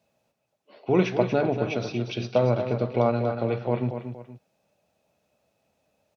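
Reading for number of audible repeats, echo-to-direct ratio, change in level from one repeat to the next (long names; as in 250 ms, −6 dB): 2, −8.0 dB, −9.0 dB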